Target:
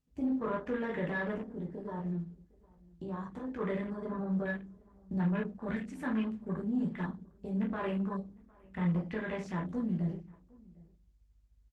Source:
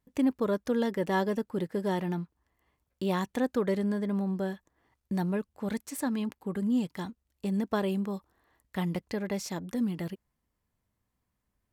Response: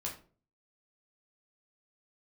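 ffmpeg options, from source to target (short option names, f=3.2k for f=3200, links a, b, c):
-filter_complex "[0:a]adynamicequalizer=threshold=0.00398:dfrequency=1700:dqfactor=0.77:tfrequency=1700:tqfactor=0.77:attack=5:release=100:ratio=0.375:range=3:mode=boostabove:tftype=bell,lowpass=9.1k,equalizer=f=510:t=o:w=1.9:g=-4.5,alimiter=level_in=1.5dB:limit=-24dB:level=0:latency=1:release=17,volume=-1.5dB,asettb=1/sr,asplit=3[a][b][c];[a]atrim=end=1.344[d];[b]atrim=start=1.34:end=3.59,asetpts=PTS-STARTPTS,afade=t=in:d=0.004:c=qsin,afade=t=out:st=2.246:d=0.004:c=qsin,acompressor=threshold=-36dB:ratio=12[e];[c]atrim=start=3.586[f];[d][e]acrossfade=d=0.004:c1=hsin:c2=qsin[g];[g][f]acrossfade=d=0.004:c1=qsin:c2=hsin,aeval=exprs='val(0)+0.000891*(sin(2*PI*50*n/s)+sin(2*PI*2*50*n/s)/2+sin(2*PI*3*50*n/s)/3+sin(2*PI*4*50*n/s)/4+sin(2*PI*5*50*n/s)/5)':c=same[h];[1:a]atrim=start_sample=2205,afade=t=out:st=0.41:d=0.01,atrim=end_sample=18522[i];[h][i]afir=irnorm=-1:irlink=0,afwtdn=0.00794,asplit=2[j][k];[k]adelay=758,volume=-25dB,highshelf=f=4k:g=-17.1[l];[j][l]amix=inputs=2:normalize=0,asoftclip=type=tanh:threshold=-21.5dB" -ar 48000 -c:a libopus -b:a 16k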